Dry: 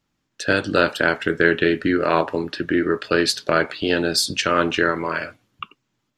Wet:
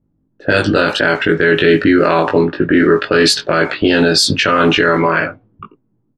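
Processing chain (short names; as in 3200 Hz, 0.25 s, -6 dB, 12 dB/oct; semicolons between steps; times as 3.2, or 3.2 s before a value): low-pass opened by the level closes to 350 Hz, open at -14 dBFS; doubler 19 ms -3 dB; maximiser +12.5 dB; gain -1 dB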